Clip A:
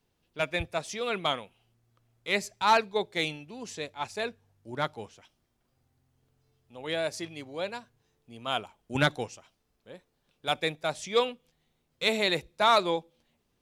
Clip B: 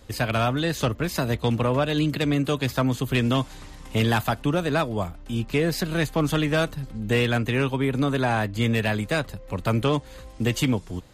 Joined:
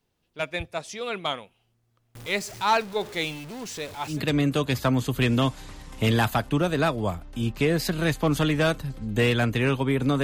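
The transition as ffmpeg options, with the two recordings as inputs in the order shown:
-filter_complex "[0:a]asettb=1/sr,asplit=3[s0][s1][s2];[s0]atrim=end=2.154[s3];[s1]atrim=start=2.15:end=4.22,asetpts=PTS-STARTPTS,afade=t=in:d=0.004:c=qsin,afade=t=out:st=2.066:d=0.004:c=qsin,aeval=exprs='val(0)+0.5*0.0158*sgn(val(0))':c=same[s4];[s2]atrim=start=4.216[s5];[s3][s4]acrossfade=d=0.004:c1=hsin:c2=qsin[s6];[s6][s5]acrossfade=d=0.004:c1=qsin:c2=hsin,apad=whole_dur=10.23,atrim=end=10.23,atrim=end=4.22,asetpts=PTS-STARTPTS[s7];[1:a]atrim=start=1.99:end=8.16,asetpts=PTS-STARTPTS[s8];[s7][s8]acrossfade=d=0.16:c1=tri:c2=tri"

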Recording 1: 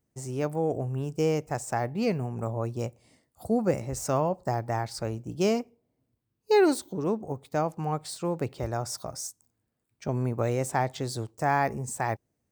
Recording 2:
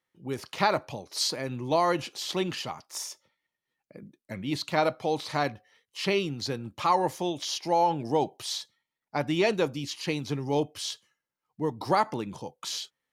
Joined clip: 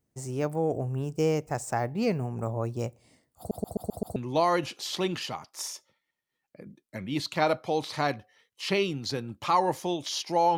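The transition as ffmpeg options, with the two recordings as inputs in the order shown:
-filter_complex "[0:a]apad=whole_dur=10.57,atrim=end=10.57,asplit=6[s0][s1][s2][s3][s4][s5];[s0]atrim=end=3.512[s6];[s1]atrim=start=3.378:end=3.512[s7];[s2]atrim=start=3.378:end=3.512[s8];[s3]atrim=start=3.378:end=3.512[s9];[s4]atrim=start=3.378:end=3.512[s10];[s5]atrim=start=3.378:end=3.512[s11];[1:a]atrim=start=1.518:end=7.93[s12];[s6][s7]acrossfade=d=0.004:c1=hsin:c2=hsin[s13];[s13][s8]acrossfade=d=0.004:c1=hsin:c2=hsin[s14];[s14][s9]acrossfade=d=0.004:c1=hsin:c2=hsin[s15];[s15][s10]acrossfade=d=0.004:c1=hsin:c2=hsin[s16];[s16][s11]acrossfade=d=0.004:c1=hsin:c2=hsin[s17];[s17][s12]acrossfade=d=0.004:c1=hsin:c2=hsin"

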